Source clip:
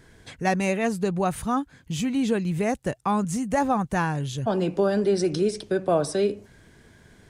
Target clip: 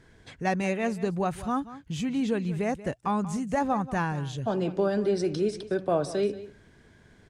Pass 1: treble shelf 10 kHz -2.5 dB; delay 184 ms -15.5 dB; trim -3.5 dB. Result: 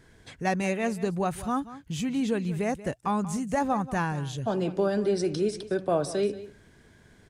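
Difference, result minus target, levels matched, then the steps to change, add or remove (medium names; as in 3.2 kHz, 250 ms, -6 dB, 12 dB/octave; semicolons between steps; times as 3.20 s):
8 kHz band +3.5 dB
change: treble shelf 10 kHz -14.5 dB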